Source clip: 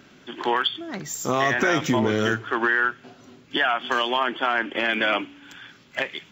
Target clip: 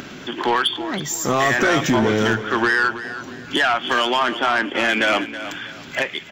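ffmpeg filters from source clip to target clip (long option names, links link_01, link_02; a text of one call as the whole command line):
ffmpeg -i in.wav -filter_complex "[0:a]asplit=2[link_01][link_02];[link_02]acompressor=mode=upward:threshold=-26dB:ratio=2.5,volume=0.5dB[link_03];[link_01][link_03]amix=inputs=2:normalize=0,asoftclip=type=tanh:threshold=-11dB,aecho=1:1:323|646|969:0.224|0.0694|0.0215" out.wav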